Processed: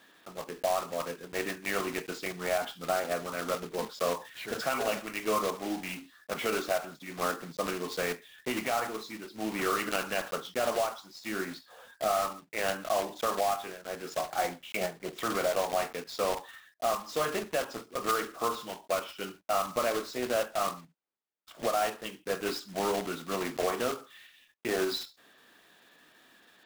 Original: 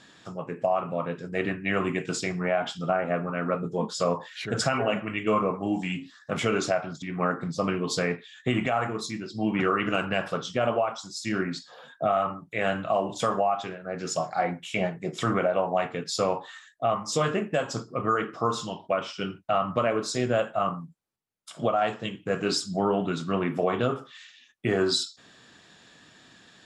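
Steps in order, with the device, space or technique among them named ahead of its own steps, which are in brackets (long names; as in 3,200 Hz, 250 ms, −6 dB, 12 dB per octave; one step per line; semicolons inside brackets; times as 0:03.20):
early digital voice recorder (band-pass filter 300–3,500 Hz; one scale factor per block 3 bits)
level −4 dB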